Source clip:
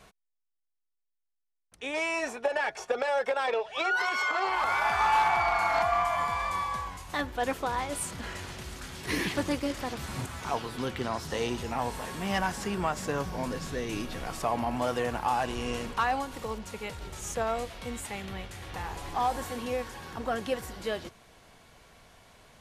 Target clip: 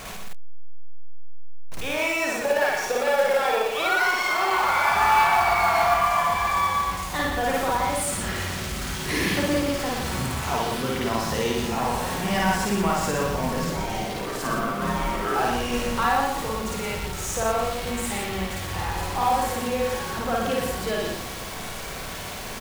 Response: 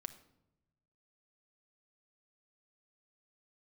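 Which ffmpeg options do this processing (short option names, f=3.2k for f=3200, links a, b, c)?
-filter_complex "[0:a]aeval=exprs='val(0)+0.5*0.02*sgn(val(0))':c=same,asettb=1/sr,asplit=3[a][b][c];[a]atrim=end=13.644[d];[b]atrim=start=13.64:end=15.36,asetpts=PTS-STARTPTS,afade=t=in:d=0.004:c=qsin,afade=t=out:st=1.716:d=0.004:c=qsin,aeval=exprs='val(0)*sin(2*PI*450*n/s)':c=same[e];[c]atrim=start=15.356[f];[d][e]acrossfade=d=0.004:c1=hsin:c2=qsin[g];[g][f]acrossfade=d=0.004:c1=qsin:c2=hsin,aecho=1:1:119:0.562,asplit=2[h][i];[1:a]atrim=start_sample=2205,adelay=54[j];[i][j]afir=irnorm=-1:irlink=0,volume=4.5dB[k];[h][k]amix=inputs=2:normalize=0,acrusher=bits=5:mode=log:mix=0:aa=0.000001"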